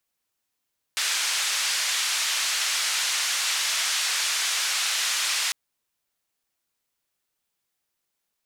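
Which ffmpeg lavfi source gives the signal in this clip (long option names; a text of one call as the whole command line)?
ffmpeg -f lavfi -i "anoisesrc=color=white:duration=4.55:sample_rate=44100:seed=1,highpass=frequency=1400,lowpass=frequency=6700,volume=-14.7dB" out.wav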